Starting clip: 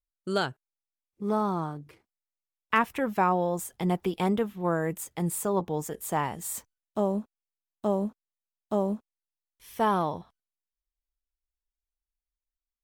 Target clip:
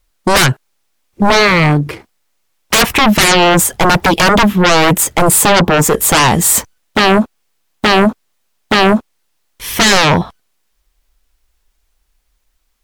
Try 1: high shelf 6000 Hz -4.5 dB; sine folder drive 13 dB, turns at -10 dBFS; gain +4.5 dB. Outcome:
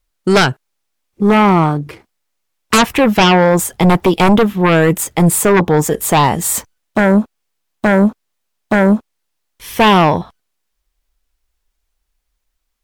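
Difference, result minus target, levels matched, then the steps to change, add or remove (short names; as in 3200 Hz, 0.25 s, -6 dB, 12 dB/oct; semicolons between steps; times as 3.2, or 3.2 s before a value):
sine folder: distortion -19 dB
change: sine folder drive 21 dB, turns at -10 dBFS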